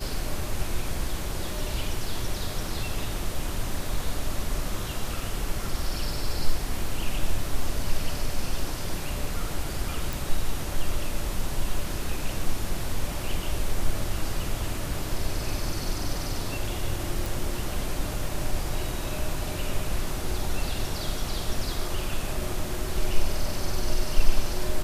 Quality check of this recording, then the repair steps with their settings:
10.13 pop
17.26 pop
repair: de-click

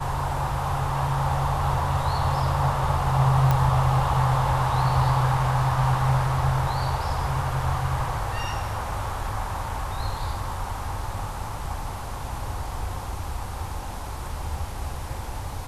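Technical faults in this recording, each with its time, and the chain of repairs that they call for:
3.51 pop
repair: de-click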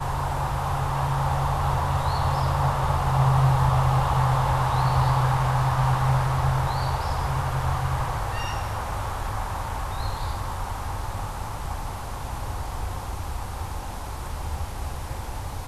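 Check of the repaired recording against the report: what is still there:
none

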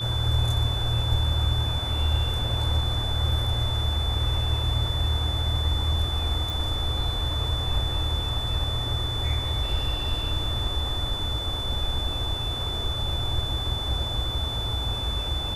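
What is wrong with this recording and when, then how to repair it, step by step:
tone 3500 Hz -30 dBFS
6.5 pop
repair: de-click; notch 3500 Hz, Q 30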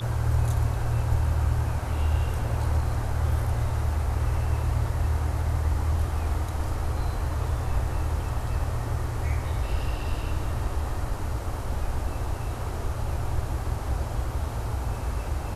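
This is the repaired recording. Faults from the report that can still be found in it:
none

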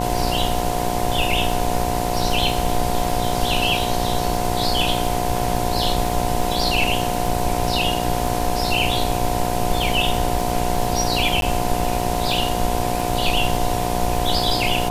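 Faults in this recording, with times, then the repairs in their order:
buzz 60 Hz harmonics 17 -25 dBFS
crackle 50/s -26 dBFS
tone 720 Hz -27 dBFS
11.41–11.42 gap 12 ms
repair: de-click; notch 720 Hz, Q 30; de-hum 60 Hz, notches 17; interpolate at 11.41, 12 ms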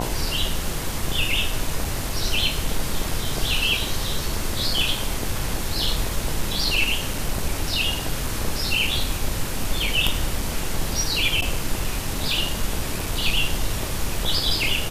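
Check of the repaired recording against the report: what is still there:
none

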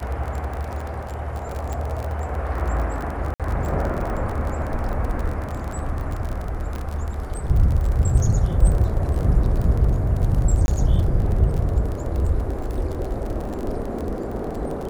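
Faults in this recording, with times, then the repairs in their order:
crackle 34/s -26 dBFS
1.73 pop
3.34–3.4 gap 57 ms
6.76 pop -18 dBFS
10.66–10.68 gap 21 ms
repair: de-click; interpolate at 3.34, 57 ms; interpolate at 10.66, 21 ms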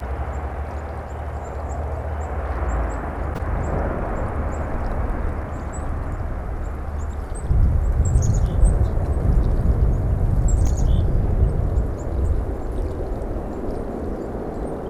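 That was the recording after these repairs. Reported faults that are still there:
none

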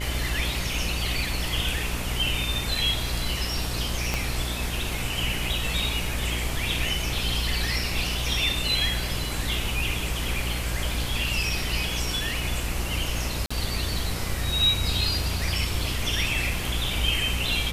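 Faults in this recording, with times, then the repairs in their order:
buzz 60 Hz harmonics 28 -31 dBFS
4.14 pop
13.46–13.51 gap 45 ms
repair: de-click; de-hum 60 Hz, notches 28; interpolate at 13.46, 45 ms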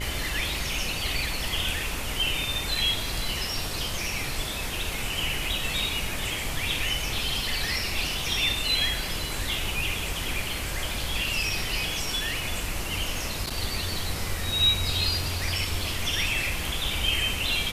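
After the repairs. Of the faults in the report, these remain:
4.14 pop

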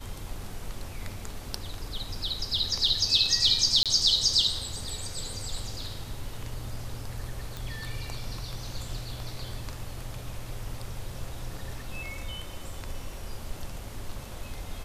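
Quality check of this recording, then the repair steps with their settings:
3.83–3.86 gap 27 ms
7.57 pop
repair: de-click; interpolate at 3.83, 27 ms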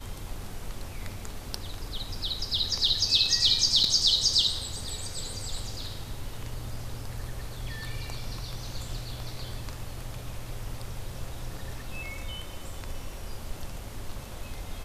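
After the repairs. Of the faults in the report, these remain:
none

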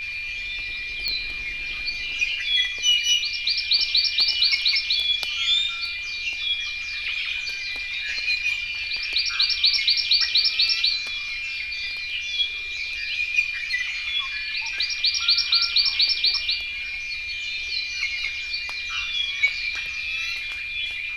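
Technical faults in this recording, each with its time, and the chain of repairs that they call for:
tone 2400 Hz -29 dBFS
1.08 pop -12 dBFS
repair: de-click; notch 2400 Hz, Q 30

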